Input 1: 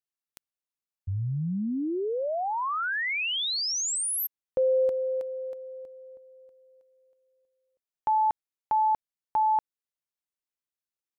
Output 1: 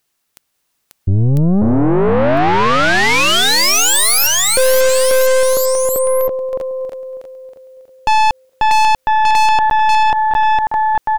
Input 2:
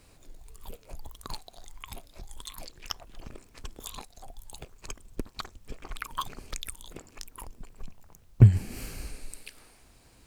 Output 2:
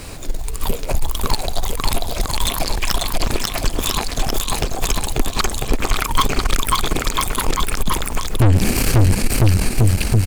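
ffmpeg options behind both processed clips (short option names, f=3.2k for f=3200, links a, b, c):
-af "aecho=1:1:540|999|1389|1721|2003:0.631|0.398|0.251|0.158|0.1,aeval=exprs='(tanh(44.7*val(0)+0.7)-tanh(0.7))/44.7':c=same,alimiter=level_in=34dB:limit=-1dB:release=50:level=0:latency=1,volume=-5.5dB"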